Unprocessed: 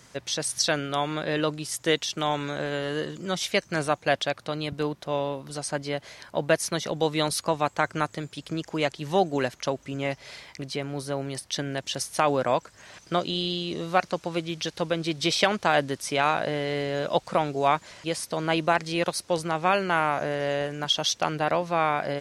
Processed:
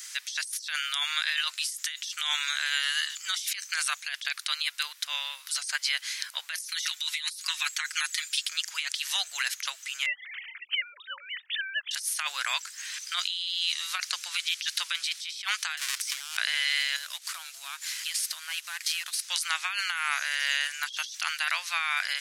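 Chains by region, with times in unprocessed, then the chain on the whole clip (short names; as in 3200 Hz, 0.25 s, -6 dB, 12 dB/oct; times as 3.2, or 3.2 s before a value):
6.63–8.43 HPF 1400 Hz + comb 5.5 ms, depth 78%
10.06–11.91 sine-wave speech + air absorption 140 m
15.77–16.37 half-waves squared off + LPF 9400 Hz
16.96–19.22 CVSD 64 kbps + compressor 4:1, threshold -34 dBFS
whole clip: HPF 1500 Hz 24 dB/oct; tilt +3.5 dB/oct; negative-ratio compressor -32 dBFS, ratio -1; gain +1 dB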